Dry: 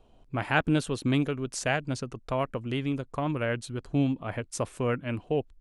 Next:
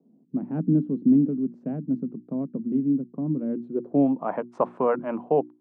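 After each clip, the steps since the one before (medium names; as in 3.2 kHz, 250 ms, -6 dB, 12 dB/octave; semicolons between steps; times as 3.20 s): steep high-pass 160 Hz 48 dB/octave; low-pass sweep 240 Hz -> 940 Hz, 3.45–4.25 s; hum notches 60/120/180/240/300/360 Hz; trim +4.5 dB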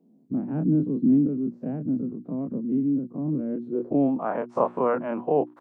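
every event in the spectrogram widened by 60 ms; trim -3 dB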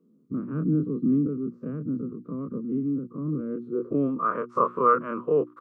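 FFT filter 140 Hz 0 dB, 270 Hz -4 dB, 470 Hz +2 dB, 790 Hz -23 dB, 1.2 kHz +15 dB, 1.7 kHz -3 dB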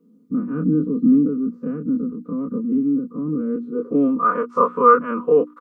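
comb 4.1 ms, depth 87%; trim +3.5 dB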